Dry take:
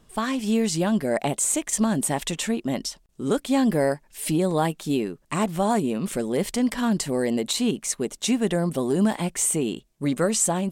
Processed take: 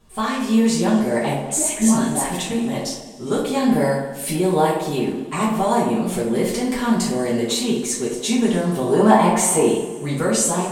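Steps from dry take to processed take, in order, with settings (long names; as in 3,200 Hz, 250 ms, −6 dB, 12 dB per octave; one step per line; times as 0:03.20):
0:01.38–0:02.51: all-pass dispersion highs, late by 130 ms, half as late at 1,000 Hz
0:08.92–0:09.67: parametric band 860 Hz +13.5 dB 2.1 octaves
tape delay 63 ms, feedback 72%, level −4.5 dB, low-pass 1,700 Hz
coupled-rooms reverb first 0.29 s, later 1.9 s, from −18 dB, DRR −7.5 dB
level −4.5 dB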